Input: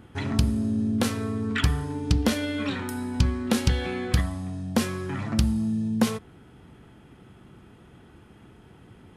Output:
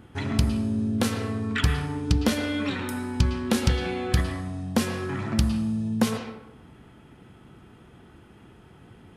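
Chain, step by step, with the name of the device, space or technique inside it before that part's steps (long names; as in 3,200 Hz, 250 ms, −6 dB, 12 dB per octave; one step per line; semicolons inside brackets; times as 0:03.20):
filtered reverb send (on a send: high-pass filter 450 Hz 6 dB per octave + low-pass filter 4,500 Hz 12 dB per octave + convolution reverb RT60 0.85 s, pre-delay 103 ms, DRR 6 dB)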